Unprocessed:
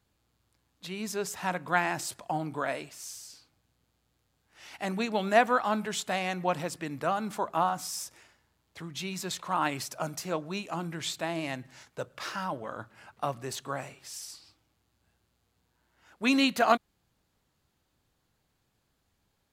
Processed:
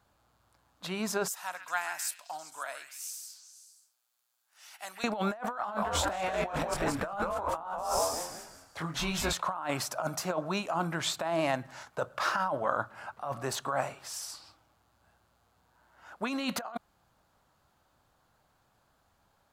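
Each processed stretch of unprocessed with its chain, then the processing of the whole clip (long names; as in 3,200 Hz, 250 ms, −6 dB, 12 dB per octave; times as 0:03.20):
0:01.28–0:05.04: first difference + echo through a band-pass that steps 132 ms, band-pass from 2,000 Hz, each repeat 0.7 octaves, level −6.5 dB
0:05.58–0:09.33: double-tracking delay 25 ms −4 dB + de-essing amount 60% + echo with shifted repeats 185 ms, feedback 37%, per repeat −130 Hz, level −4.5 dB
whole clip: flat-topped bell 930 Hz +9 dB; compressor whose output falls as the input rises −29 dBFS, ratio −1; level −3.5 dB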